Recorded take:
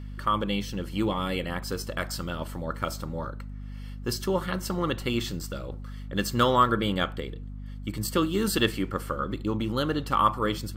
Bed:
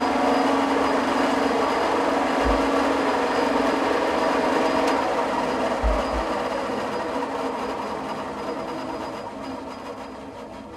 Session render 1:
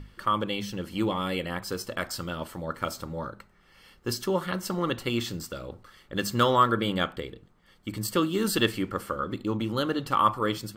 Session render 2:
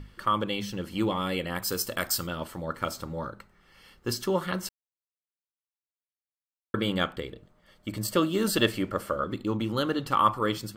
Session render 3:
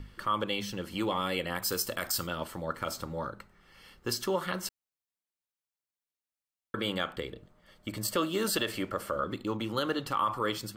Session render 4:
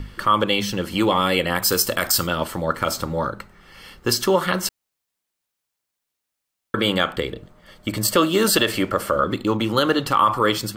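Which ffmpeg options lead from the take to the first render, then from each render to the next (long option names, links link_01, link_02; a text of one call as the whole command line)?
ffmpeg -i in.wav -af "bandreject=frequency=50:width_type=h:width=6,bandreject=frequency=100:width_type=h:width=6,bandreject=frequency=150:width_type=h:width=6,bandreject=frequency=200:width_type=h:width=6,bandreject=frequency=250:width_type=h:width=6" out.wav
ffmpeg -i in.wav -filter_complex "[0:a]asettb=1/sr,asplit=3[link_01][link_02][link_03];[link_01]atrim=end=1.554[link_04];[link_02]atrim=start=1.55:end=2.27,asetpts=PTS-STARTPTS,afade=type=in:duration=0.004:curve=qsin,afade=type=out:start_time=0.716:duration=0.004:curve=qsin,aemphasis=mode=production:type=50kf[link_05];[link_03]atrim=start=2.266[link_06];[link_04][link_05]acrossfade=duration=0.004:curve1=hsin:curve2=qsin[link_07];[link_07][link_06]acrossfade=duration=0.004:curve1=qsin:curve2=hsin,asettb=1/sr,asplit=3[link_08][link_09][link_10];[link_08]atrim=end=7.324[link_11];[link_09]atrim=start=7.32:end=9.24,asetpts=PTS-STARTPTS,afade=type=in:duration=0.004:curve=qsin,afade=type=out:start_time=1.916:duration=0.004:curve=qsin,equalizer=frequency=610:width=6.8:gain=12[link_12];[link_10]atrim=start=9.236[link_13];[link_11][link_12]acrossfade=duration=0.004:curve1=hsin:curve2=qsin[link_14];[link_14][link_13]acrossfade=duration=0.004:curve1=qsin:curve2=hsin,asplit=3[link_15][link_16][link_17];[link_15]atrim=end=4.69,asetpts=PTS-STARTPTS,afade=type=out:start_time=4.686:duration=0.004:curve=hsin[link_18];[link_16]atrim=start=4.69:end=6.74,asetpts=PTS-STARTPTS,volume=0[link_19];[link_17]atrim=start=6.74,asetpts=PTS-STARTPTS,afade=type=in:duration=0.004:curve=hsin[link_20];[link_18][link_19][link_20]concat=n=3:v=0:a=1" out.wav
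ffmpeg -i in.wav -filter_complex "[0:a]acrossover=split=410[link_01][link_02];[link_01]acompressor=threshold=-40dB:ratio=2[link_03];[link_03][link_02]amix=inputs=2:normalize=0,alimiter=limit=-18.5dB:level=0:latency=1:release=53" out.wav
ffmpeg -i in.wav -af "volume=12dB" out.wav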